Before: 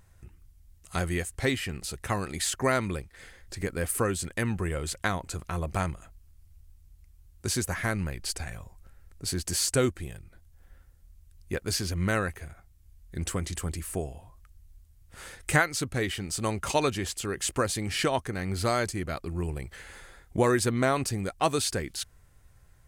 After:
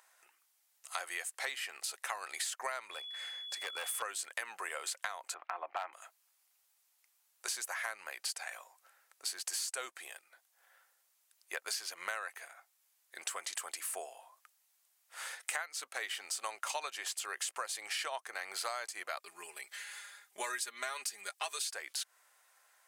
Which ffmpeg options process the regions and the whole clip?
-filter_complex "[0:a]asettb=1/sr,asplit=3[a][b][c];[a]atrim=end=2.914[d];[b]atrim=start=2.91:end=4.02,asetpts=PTS-STARTPTS,afade=t=in:d=0.004:c=qsin,afade=t=out:st=1.106:d=0.004:c=qsin,equalizer=f=13k:t=o:w=1.8:g=-2.5,volume=30dB,asoftclip=hard,volume=-30dB,aeval=exprs='val(0)+0.00631*sin(2*PI*3400*n/s)':c=same[e];[c]atrim=start=4.016[f];[d][e]acrossfade=d=0.004:c1=hsin:c2=qsin[g];[g][f]acrossfade=d=0.004:c1=qsin:c2=hsin,asettb=1/sr,asplit=3[h][i][j];[h]atrim=end=5.344[k];[i]atrim=start=5.34:end=5.93,asetpts=PTS-STARTPTS,afade=t=in:d=0.004:c=qsin,afade=t=out:st=0.586:d=0.004:c=qsin,highpass=f=230:w=0.5412,highpass=f=230:w=1.3066,equalizer=f=310:t=q:w=4:g=4,equalizer=f=480:t=q:w=4:g=-4,equalizer=f=770:t=q:w=4:g=6,lowpass=f=2.5k:w=0.5412,lowpass=f=2.5k:w=1.3066,volume=20.5dB,asoftclip=hard,volume=-20.5dB[l];[j]atrim=start=5.926[m];[k][l]acrossfade=d=0.004:c1=hsin:c2=qsin[n];[n][m]acrossfade=d=0.004:c1=qsin:c2=hsin,asettb=1/sr,asplit=3[o][p][q];[o]atrim=end=19.194[r];[p]atrim=start=19.19:end=21.67,asetpts=PTS-STARTPTS,afade=t=in:d=0.004:c=qsin,afade=t=out:st=2.476:d=0.004:c=qsin,equalizer=f=730:t=o:w=1.9:g=-11,aecho=1:1:4.9:0.8,atrim=end_sample=109368[s];[q]atrim=start=21.666[t];[r][s]acrossfade=d=0.004:c1=hsin:c2=qsin[u];[u][t]acrossfade=d=0.004:c1=qsin:c2=hsin,highpass=f=690:w=0.5412,highpass=f=690:w=1.3066,acompressor=threshold=-37dB:ratio=8,volume=2dB"

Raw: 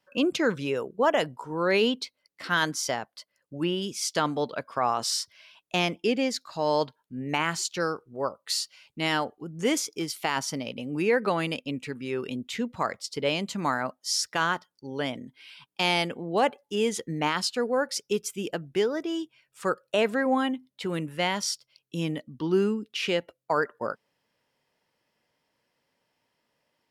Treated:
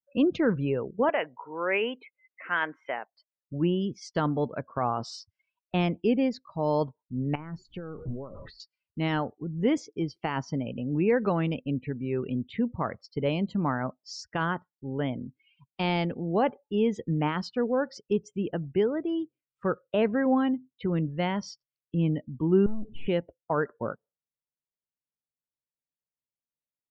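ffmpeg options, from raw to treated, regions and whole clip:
-filter_complex "[0:a]asettb=1/sr,asplit=3[a][b][c];[a]atrim=end=1.094[d];[b]atrim=start=1.09:end=3.08,asetpts=PTS-STARTPTS,afade=t=in:d=0.004:c=qsin,afade=t=out:st=1.986:d=0.004:c=qsin,highpass=520,highshelf=f=3.4k:t=q:w=3:g=-11.5,acompressor=mode=upward:threshold=-37dB:ratio=2.5:attack=3.2:release=140:knee=2.83:detection=peak[e];[c]atrim=start=3.076[f];[d][e]acrossfade=d=0.004:c1=hsin:c2=qsin[g];[g][f]acrossfade=d=0.004:c1=qsin:c2=hsin,asettb=1/sr,asplit=3[h][i][j];[h]atrim=end=7.354[k];[i]atrim=start=7.35:end=8.6,asetpts=PTS-STARTPTS,afade=t=in:d=0.004:c=qsin,afade=t=out:st=1.246:d=0.004:c=qsin,aeval=exprs='val(0)+0.5*0.0106*sgn(val(0))':c=same,lowshelf=f=490:g=5,acompressor=threshold=-35dB:ratio=12:attack=3.2:release=140:knee=1:detection=peak[l];[j]atrim=start=8.596[m];[k][l]acrossfade=d=0.004:c1=hsin:c2=qsin[n];[n][m]acrossfade=d=0.004:c1=qsin:c2=hsin,asettb=1/sr,asplit=3[o][p][q];[o]atrim=end=22.664[r];[p]atrim=start=22.66:end=23.07,asetpts=PTS-STARTPTS,afade=t=in:d=0.004:c=qsin,afade=t=out:st=0.406:d=0.004:c=qsin,aeval=exprs='val(0)+0.5*0.00668*sgn(val(0))':c=same,aeval=exprs='(tanh(79.4*val(0)+0.6)-tanh(0.6))/79.4':c=same[s];[q]atrim=start=23.066[t];[r][s]acrossfade=d=0.004:c1=hsin:c2=qsin[u];[u][t]acrossfade=d=0.004:c1=qsin:c2=hsin,aemphasis=mode=reproduction:type=riaa,afftdn=nr=31:nf=-43,volume=-3.5dB"

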